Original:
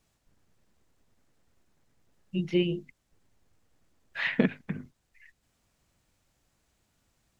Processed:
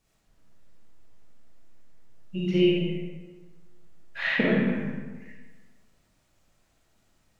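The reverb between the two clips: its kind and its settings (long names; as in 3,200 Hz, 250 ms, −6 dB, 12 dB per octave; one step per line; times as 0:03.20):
comb and all-pass reverb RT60 1.4 s, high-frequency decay 0.6×, pre-delay 10 ms, DRR −6 dB
level −2 dB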